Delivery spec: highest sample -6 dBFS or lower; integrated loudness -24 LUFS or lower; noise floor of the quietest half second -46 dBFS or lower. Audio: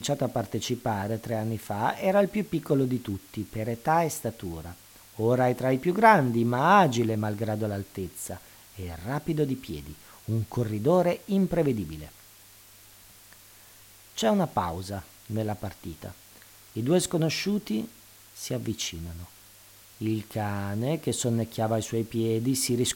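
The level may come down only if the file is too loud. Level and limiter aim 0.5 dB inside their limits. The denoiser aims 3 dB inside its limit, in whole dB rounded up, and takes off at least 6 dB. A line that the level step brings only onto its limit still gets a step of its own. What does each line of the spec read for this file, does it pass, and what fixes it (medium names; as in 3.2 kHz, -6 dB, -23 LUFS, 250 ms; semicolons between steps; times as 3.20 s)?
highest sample -4.5 dBFS: fail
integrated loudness -27.0 LUFS: pass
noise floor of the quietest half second -53 dBFS: pass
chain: peak limiter -6.5 dBFS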